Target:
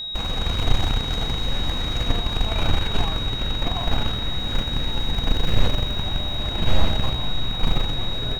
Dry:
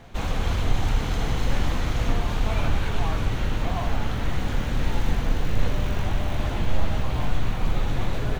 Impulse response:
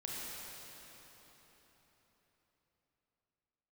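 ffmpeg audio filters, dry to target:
-af "aeval=exprs='0.422*(cos(1*acos(clip(val(0)/0.422,-1,1)))-cos(1*PI/2))+0.15*(cos(2*acos(clip(val(0)/0.422,-1,1)))-cos(2*PI/2))+0.0168*(cos(5*acos(clip(val(0)/0.422,-1,1)))-cos(5*PI/2))+0.0299*(cos(7*acos(clip(val(0)/0.422,-1,1)))-cos(7*PI/2))':c=same,aeval=exprs='val(0)+0.0398*sin(2*PI*3800*n/s)':c=same"

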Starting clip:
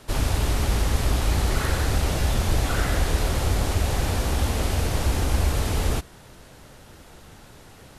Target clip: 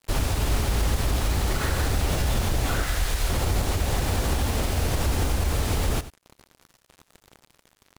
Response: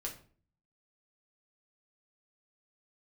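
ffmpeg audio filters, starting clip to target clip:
-filter_complex "[0:a]asettb=1/sr,asplit=3[s0][s1][s2];[s0]atrim=end=2.844[s3];[s1]atrim=start=2.84:end=3.3,asetpts=PTS-STARTPTS,afade=t=in:d=0.004:c=qsin,afade=t=out:st=0.456:d=0.004:c=qsin,equalizer=f=260:w=0.32:g=-10.5[s4];[s2]atrim=start=3.296[s5];[s3][s4]acrossfade=d=0.004:c1=hsin:c2=qsin[s6];[s6][s5]acrossfade=d=0.004:c1=qsin:c2=hsin,alimiter=limit=0.15:level=0:latency=1:release=72,acrusher=bits=5:mix=0:aa=0.5,aecho=1:1:92:0.178,volume=1.19"

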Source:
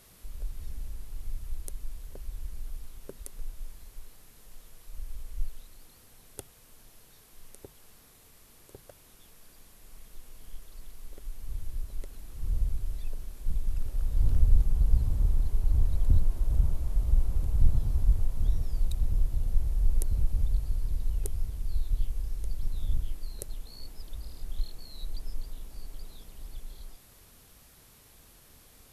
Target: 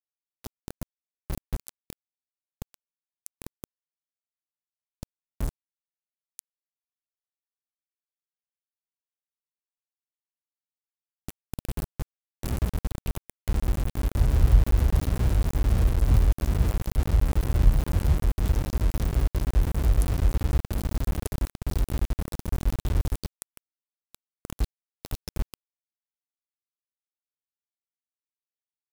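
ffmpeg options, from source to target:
-filter_complex "[0:a]afreqshift=26,asplit=4[s0][s1][s2][s3];[s1]asetrate=29433,aresample=44100,atempo=1.49831,volume=0.282[s4];[s2]asetrate=52444,aresample=44100,atempo=0.840896,volume=0.2[s5];[s3]asetrate=88200,aresample=44100,atempo=0.5,volume=0.251[s6];[s0][s4][s5][s6]amix=inputs=4:normalize=0,aeval=exprs='val(0)*gte(abs(val(0)),0.0562)':c=same"

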